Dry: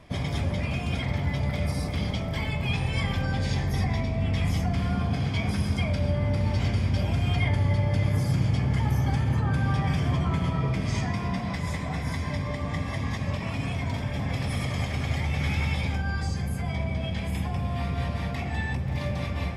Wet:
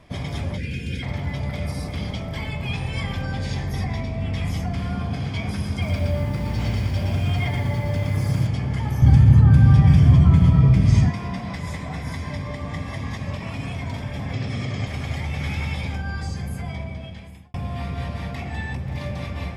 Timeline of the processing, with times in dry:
0.57–1.03 s: time-frequency box 550–1400 Hz -21 dB
5.70–8.47 s: bit-crushed delay 118 ms, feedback 35%, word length 8-bit, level -4 dB
9.02–11.10 s: tone controls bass +14 dB, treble +2 dB
14.33–14.87 s: cabinet simulation 100–7200 Hz, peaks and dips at 110 Hz +8 dB, 240 Hz +5 dB, 390 Hz +5 dB, 930 Hz -5 dB
16.60–17.54 s: fade out

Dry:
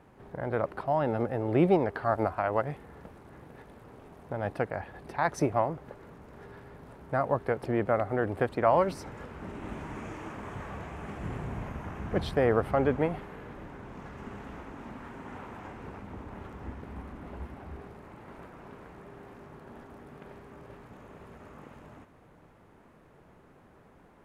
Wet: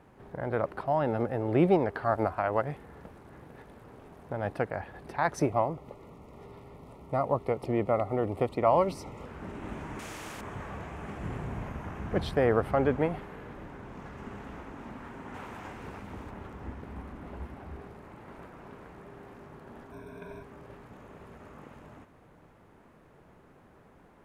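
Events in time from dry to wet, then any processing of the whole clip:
5.49–9.26 s: Butterworth band-stop 1.6 kHz, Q 2.8
9.99–10.41 s: spectrum-flattening compressor 2:1
15.34–16.31 s: treble shelf 2.2 kHz +7.5 dB
19.92–20.43 s: rippled EQ curve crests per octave 1.6, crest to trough 17 dB

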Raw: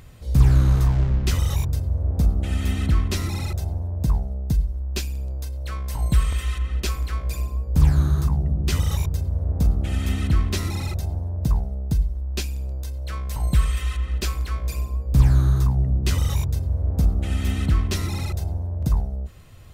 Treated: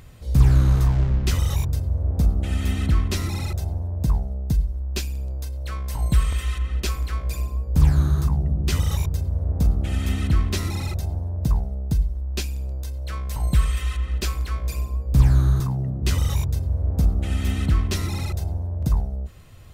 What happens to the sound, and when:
15.60–16.01 s: high-pass 93 Hz 24 dB/octave

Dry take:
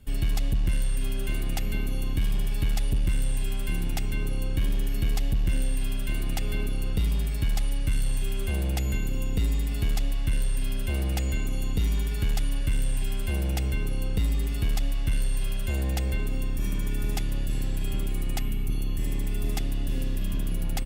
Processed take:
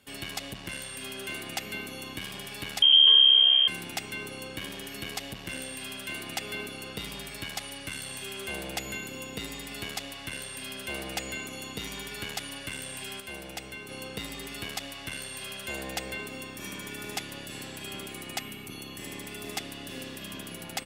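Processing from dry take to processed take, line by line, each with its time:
2.82–3.68 s: frequency inversion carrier 3.2 kHz
13.20–13.89 s: gain -5 dB
whole clip: frequency weighting A; trim +2.5 dB

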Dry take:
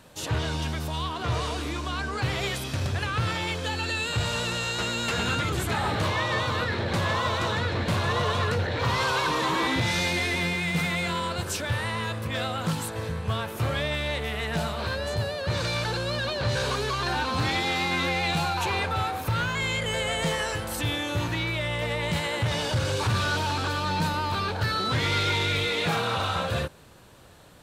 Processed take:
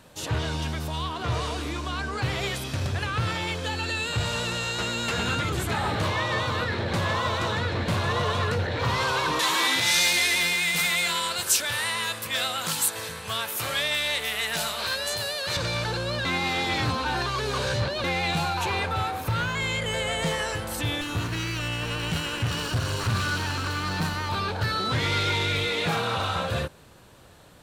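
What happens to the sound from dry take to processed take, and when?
9.39–15.57 s: tilt EQ +4 dB/octave
16.25–18.04 s: reverse
21.01–24.29 s: comb filter that takes the minimum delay 0.7 ms

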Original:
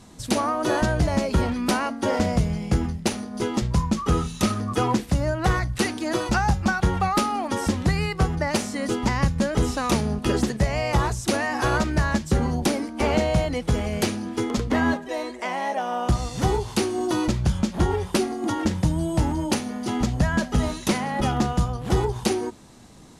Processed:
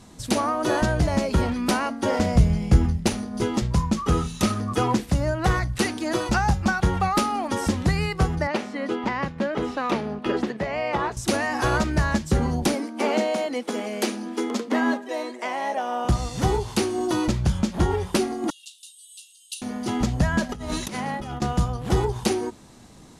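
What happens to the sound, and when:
2.35–3.57 s: bass shelf 110 Hz +10 dB
8.47–11.17 s: three-band isolator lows -19 dB, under 200 Hz, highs -20 dB, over 3.7 kHz
12.75–16.05 s: elliptic high-pass 220 Hz
18.50–19.62 s: rippled Chebyshev high-pass 2.7 kHz, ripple 9 dB
20.49–21.42 s: compressor with a negative ratio -31 dBFS

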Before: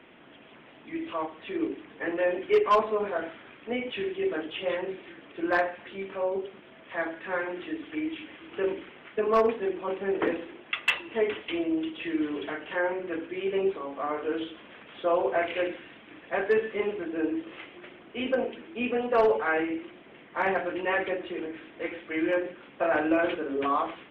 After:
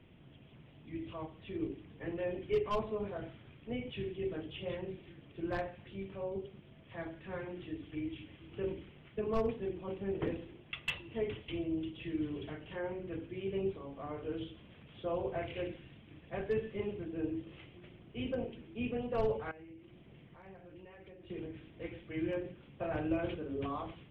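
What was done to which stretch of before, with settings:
19.51–21.30 s: compression 3:1, threshold -46 dBFS
whole clip: FFT filter 130 Hz 0 dB, 250 Hz -17 dB, 1.6 kHz -28 dB, 3.1 kHz -20 dB; trim +10.5 dB

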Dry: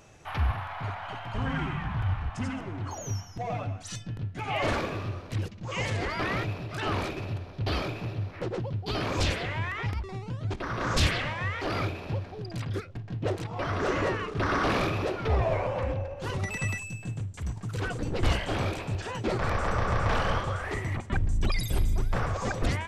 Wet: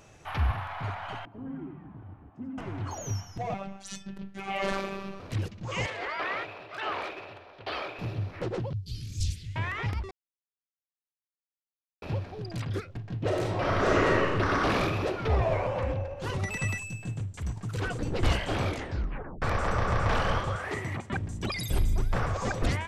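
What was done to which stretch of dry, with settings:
1.25–2.58 s: band-pass filter 300 Hz, Q 3
3.54–5.20 s: robot voice 195 Hz
5.86–7.99 s: three-band isolator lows -23 dB, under 420 Hz, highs -14 dB, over 4 kHz
8.73–9.56 s: Chebyshev band-stop 100–6500 Hz
10.11–12.02 s: mute
13.26–14.31 s: reverb throw, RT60 1.1 s, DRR -2.5 dB
18.67 s: tape stop 0.75 s
20.55–21.69 s: high-pass 110 Hz

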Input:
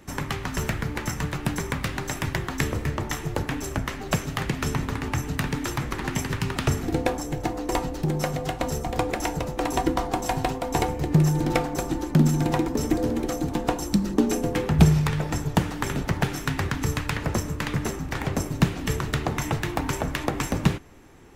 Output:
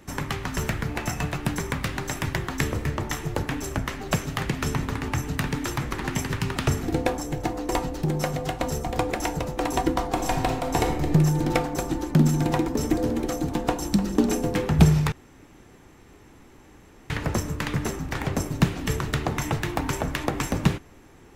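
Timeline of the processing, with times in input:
0.89–1.36 s: small resonant body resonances 700/2600 Hz, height 12 dB
10.08–11.06 s: reverb throw, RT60 0.83 s, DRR 4 dB
13.49–14.04 s: echo throw 300 ms, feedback 65%, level -12.5 dB
15.12–17.10 s: room tone

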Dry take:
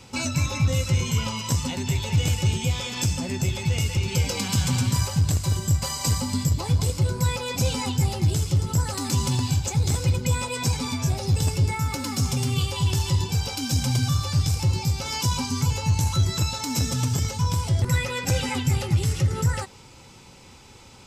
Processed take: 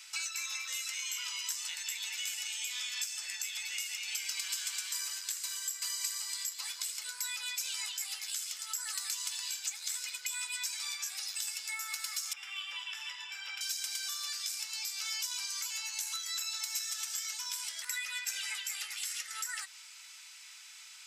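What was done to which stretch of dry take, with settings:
12.33–13.61 s: Savitzky-Golay filter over 25 samples
whole clip: Chebyshev high-pass 1.6 kHz, order 3; compression 3:1, threshold -38 dBFS; treble shelf 6 kHz +4.5 dB

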